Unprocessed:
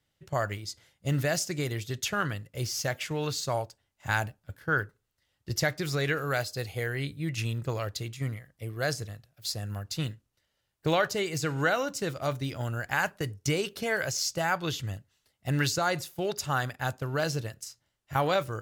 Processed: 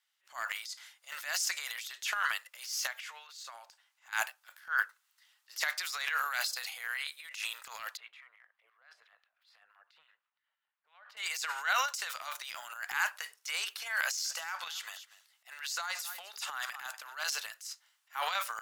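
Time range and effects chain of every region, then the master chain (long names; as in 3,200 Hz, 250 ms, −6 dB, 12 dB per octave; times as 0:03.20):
0:02.87–0:04.13: downward compressor 16 to 1, threshold −38 dBFS + high-shelf EQ 6,000 Hz −6 dB
0:07.97–0:11.17: two-band tremolo in antiphase 5.9 Hz, crossover 790 Hz + downward compressor 10 to 1, threshold −42 dBFS + high-frequency loss of the air 500 metres
0:14.01–0:17.17: downward compressor 2.5 to 1, threshold −32 dBFS + single-tap delay 239 ms −19.5 dB
whole clip: inverse Chebyshev high-pass filter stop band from 290 Hz, stop band 60 dB; transient designer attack −10 dB, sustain +10 dB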